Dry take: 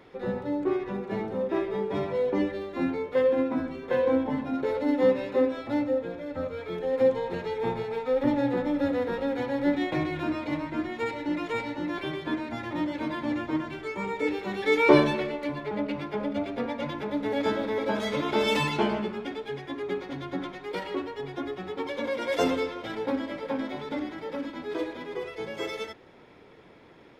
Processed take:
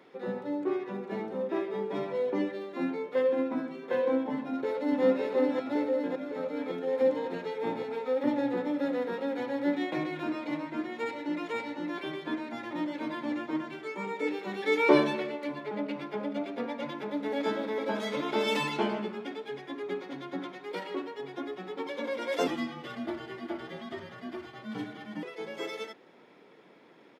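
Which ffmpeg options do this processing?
-filter_complex "[0:a]asplit=2[s0][s1];[s1]afade=t=in:st=4.35:d=0.01,afade=t=out:st=5.03:d=0.01,aecho=0:1:560|1120|1680|2240|2800|3360|3920|4480|5040|5600|6160|6720:0.749894|0.562421|0.421815|0.316362|0.237271|0.177953|0.133465|0.100099|0.0750741|0.0563056|0.0422292|0.0316719[s2];[s0][s2]amix=inputs=2:normalize=0,asettb=1/sr,asplit=3[s3][s4][s5];[s3]atrim=end=22.474[s6];[s4]atrim=start=22.47:end=25.23,asetpts=PTS-STARTPTS,afade=t=in:d=0.004:c=qsin,afade=t=out:st=2.756:d=0.004:c=qsin,afreqshift=-200[s7];[s5]atrim=start=25.226[s8];[s6][s7]acrossfade=d=0.004:c1=hsin:c2=qsin[s9];[s9][s8]acrossfade=d=0.004:c1=qsin:c2=hsin,highpass=f=170:w=0.5412,highpass=f=170:w=1.3066,volume=0.668"

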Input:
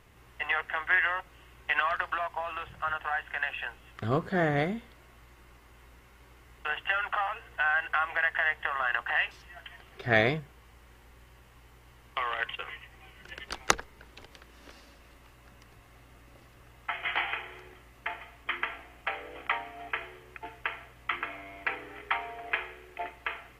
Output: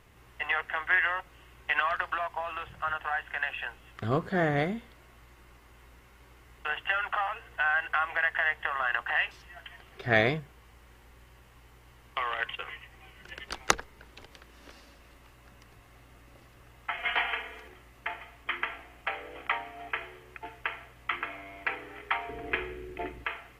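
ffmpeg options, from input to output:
-filter_complex "[0:a]asettb=1/sr,asplit=3[s0][s1][s2];[s0]atrim=end=16.974[s3];[s1]atrim=start=16.97:end=17.68,asetpts=PTS-STARTPTS,afade=t=in:d=0.004:c=qsin,afade=t=out:st=0.706:d=0.004:c=qsin,aecho=1:1:4.2:0.8,atrim=end_sample=31311[s4];[s2]atrim=start=17.676[s5];[s3][s4]acrossfade=d=0.004:c1=hsin:c2=qsin[s6];[s6][s5]acrossfade=d=0.004:c1=qsin:c2=hsin,asettb=1/sr,asplit=3[s7][s8][s9];[s7]atrim=end=22.294[s10];[s8]atrim=start=22.29:end=23.24,asetpts=PTS-STARTPTS,afade=t=in:d=0.004:c=qsin,afade=t=out:st=0.946:d=0.004:c=qsin,lowshelf=f=480:t=q:w=1.5:g=10.5[s11];[s9]atrim=start=23.236[s12];[s10][s11]acrossfade=d=0.004:c1=hsin:c2=qsin[s13];[s13][s12]acrossfade=d=0.004:c1=qsin:c2=hsin"

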